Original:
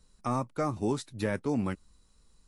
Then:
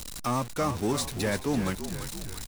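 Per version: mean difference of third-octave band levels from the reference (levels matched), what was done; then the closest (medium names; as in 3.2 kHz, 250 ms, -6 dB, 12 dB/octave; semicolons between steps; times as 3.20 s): 10.0 dB: jump at every zero crossing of -36.5 dBFS; treble shelf 2.2 kHz +7.5 dB; frequency-shifting echo 338 ms, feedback 57%, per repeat -50 Hz, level -9.5 dB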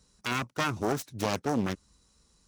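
6.5 dB: self-modulated delay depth 0.77 ms; high-pass 56 Hz; peaking EQ 5.9 kHz +7 dB 0.47 oct; trim +2 dB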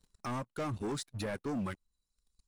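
5.0 dB: reverb removal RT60 1.2 s; waveshaping leveller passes 3; peak limiter -24 dBFS, peak gain reduction 6 dB; trim -7 dB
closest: third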